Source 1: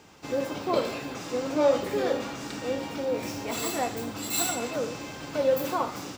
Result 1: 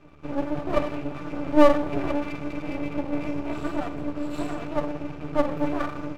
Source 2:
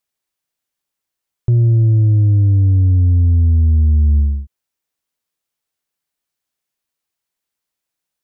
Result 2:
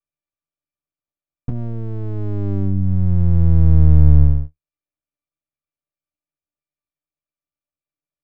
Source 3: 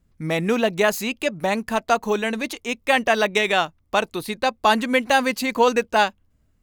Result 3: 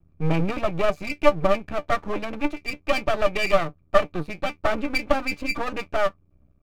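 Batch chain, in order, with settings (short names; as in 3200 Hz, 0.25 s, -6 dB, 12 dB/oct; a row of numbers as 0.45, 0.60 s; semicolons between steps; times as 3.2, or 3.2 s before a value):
octave resonator D, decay 0.11 s; half-wave rectifier; normalise peaks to -1.5 dBFS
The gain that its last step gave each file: +16.0, +6.5, +15.0 dB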